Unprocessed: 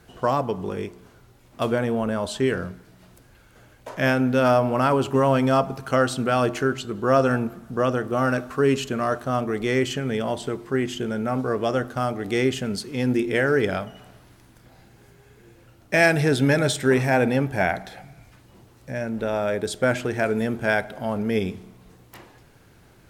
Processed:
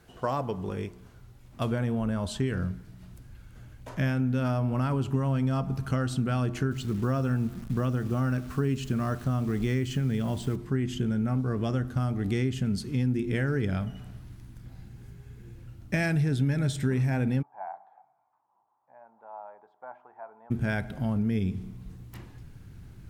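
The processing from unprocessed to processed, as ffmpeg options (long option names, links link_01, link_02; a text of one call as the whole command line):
ffmpeg -i in.wav -filter_complex "[0:a]asettb=1/sr,asplit=3[link_01][link_02][link_03];[link_01]atrim=end=6.714[link_04];[link_02]atrim=start=6.71:end=10.56,asetpts=PTS-STARTPTS,afade=type=in:duration=0.004:curve=qsin,afade=type=out:start_time=3.846:duration=0.004:curve=qsin,acrusher=bits=8:dc=4:mix=0:aa=0.000001[link_05];[link_03]atrim=start=10.556[link_06];[link_04][link_05]acrossfade=duration=0.004:curve1=hsin:curve2=qsin[link_07];[link_07][link_06]acrossfade=duration=0.004:curve1=qsin:curve2=hsin,asplit=3[link_08][link_09][link_10];[link_08]afade=type=out:start_time=17.41:duration=0.02[link_11];[link_09]asuperpass=centerf=880:order=4:qfactor=3,afade=type=in:start_time=17.41:duration=0.02,afade=type=out:start_time=20.5:duration=0.02[link_12];[link_10]afade=type=in:start_time=20.5:duration=0.02[link_13];[link_11][link_12][link_13]amix=inputs=3:normalize=0,asubboost=boost=6.5:cutoff=200,acompressor=threshold=-19dB:ratio=4,volume=-5dB" out.wav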